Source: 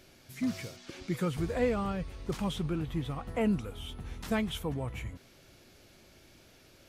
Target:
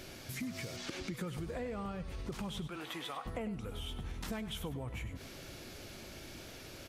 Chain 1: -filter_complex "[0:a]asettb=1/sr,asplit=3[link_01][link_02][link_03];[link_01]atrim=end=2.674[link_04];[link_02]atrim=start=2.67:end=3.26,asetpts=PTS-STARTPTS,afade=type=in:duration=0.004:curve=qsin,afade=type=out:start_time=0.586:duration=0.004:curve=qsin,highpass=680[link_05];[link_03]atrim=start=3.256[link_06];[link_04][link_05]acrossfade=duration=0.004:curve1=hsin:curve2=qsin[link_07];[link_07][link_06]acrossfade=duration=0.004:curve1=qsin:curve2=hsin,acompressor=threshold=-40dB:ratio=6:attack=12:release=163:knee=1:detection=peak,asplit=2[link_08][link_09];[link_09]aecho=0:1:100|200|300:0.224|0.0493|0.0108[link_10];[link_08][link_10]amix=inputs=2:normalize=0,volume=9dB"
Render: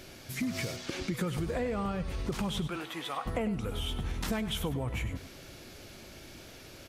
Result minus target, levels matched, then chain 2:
downward compressor: peak gain reduction −7.5 dB
-filter_complex "[0:a]asettb=1/sr,asplit=3[link_01][link_02][link_03];[link_01]atrim=end=2.674[link_04];[link_02]atrim=start=2.67:end=3.26,asetpts=PTS-STARTPTS,afade=type=in:duration=0.004:curve=qsin,afade=type=out:start_time=0.586:duration=0.004:curve=qsin,highpass=680[link_05];[link_03]atrim=start=3.256[link_06];[link_04][link_05]acrossfade=duration=0.004:curve1=hsin:curve2=qsin[link_07];[link_07][link_06]acrossfade=duration=0.004:curve1=qsin:curve2=hsin,acompressor=threshold=-49dB:ratio=6:attack=12:release=163:knee=1:detection=peak,asplit=2[link_08][link_09];[link_09]aecho=0:1:100|200|300:0.224|0.0493|0.0108[link_10];[link_08][link_10]amix=inputs=2:normalize=0,volume=9dB"

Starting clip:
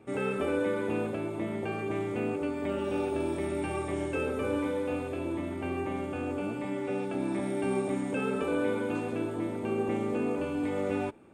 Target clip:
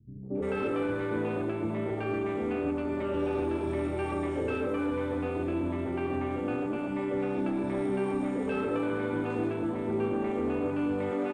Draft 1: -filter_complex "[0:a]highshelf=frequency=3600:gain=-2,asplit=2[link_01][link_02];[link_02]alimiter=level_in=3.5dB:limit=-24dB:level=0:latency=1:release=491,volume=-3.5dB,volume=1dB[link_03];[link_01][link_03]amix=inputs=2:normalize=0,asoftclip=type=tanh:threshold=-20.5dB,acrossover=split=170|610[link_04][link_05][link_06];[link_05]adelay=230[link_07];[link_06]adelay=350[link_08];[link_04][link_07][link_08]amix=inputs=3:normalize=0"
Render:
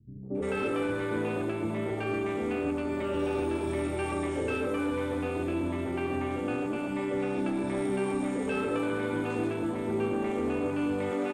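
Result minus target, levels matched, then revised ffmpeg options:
8,000 Hz band +10.0 dB
-filter_complex "[0:a]highshelf=frequency=3600:gain=-14,asplit=2[link_01][link_02];[link_02]alimiter=level_in=3.5dB:limit=-24dB:level=0:latency=1:release=491,volume=-3.5dB,volume=1dB[link_03];[link_01][link_03]amix=inputs=2:normalize=0,asoftclip=type=tanh:threshold=-20.5dB,acrossover=split=170|610[link_04][link_05][link_06];[link_05]adelay=230[link_07];[link_06]adelay=350[link_08];[link_04][link_07][link_08]amix=inputs=3:normalize=0"

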